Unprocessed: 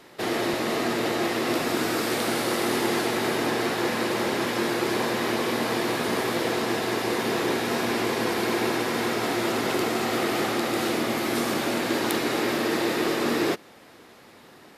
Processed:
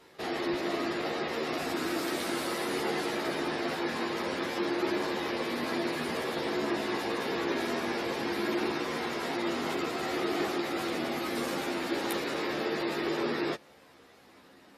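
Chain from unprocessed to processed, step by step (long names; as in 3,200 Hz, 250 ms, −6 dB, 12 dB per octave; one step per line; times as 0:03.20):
gate on every frequency bin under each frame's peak −30 dB strong
multi-voice chorus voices 4, 0.18 Hz, delay 13 ms, depth 2.1 ms
level −3.5 dB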